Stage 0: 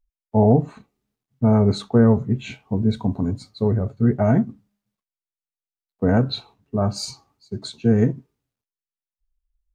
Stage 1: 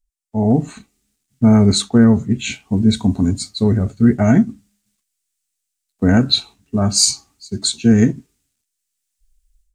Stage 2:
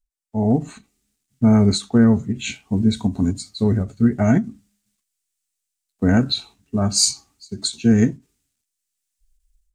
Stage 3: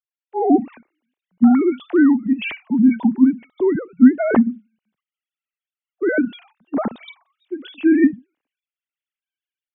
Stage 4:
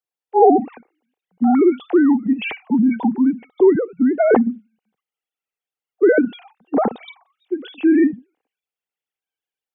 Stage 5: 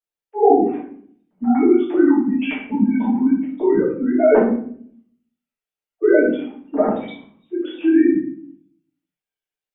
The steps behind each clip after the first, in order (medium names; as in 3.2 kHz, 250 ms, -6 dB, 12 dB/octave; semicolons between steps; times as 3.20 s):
graphic EQ 125/500/1000/8000 Hz -10/-11/-9/+11 dB; level rider gain up to 15 dB
endings held to a fixed fall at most 250 dB/s; trim -3 dB
formants replaced by sine waves; in parallel at +1.5 dB: gain riding within 3 dB 0.5 s; on the sum: trim -5 dB
peak limiter -11.5 dBFS, peak gain reduction 10 dB; small resonant body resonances 470/760 Hz, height 11 dB, ringing for 20 ms
simulated room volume 76 m³, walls mixed, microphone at 2.7 m; trim -12 dB